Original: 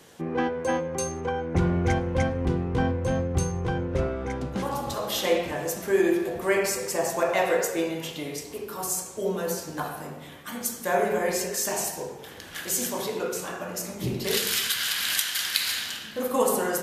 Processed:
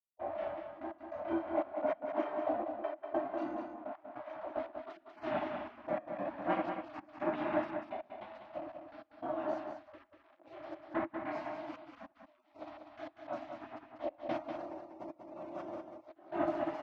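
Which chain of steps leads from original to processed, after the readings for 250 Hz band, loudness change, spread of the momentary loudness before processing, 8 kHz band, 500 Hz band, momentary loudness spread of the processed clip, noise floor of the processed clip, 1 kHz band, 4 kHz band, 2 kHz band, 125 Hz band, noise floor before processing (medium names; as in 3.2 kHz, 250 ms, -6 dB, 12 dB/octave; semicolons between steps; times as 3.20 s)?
-11.0 dB, -12.5 dB, 9 LU, under -40 dB, -11.0 dB, 15 LU, -67 dBFS, -8.5 dB, -29.5 dB, -16.5 dB, -26.5 dB, -42 dBFS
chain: comb 5.5 ms, depth 55%; waveshaping leveller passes 3; chorus voices 2, 0.46 Hz, delay 28 ms, depth 4.8 ms; hysteresis with a dead band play -30 dBFS; trance gate ".xxxxx..x." 148 bpm -24 dB; spectral gate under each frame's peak -20 dB weak; two resonant band-passes 450 Hz, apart 0.91 oct; distance through air 260 m; on a send: delay 193 ms -6.5 dB; on the sum: trim +8.5 dB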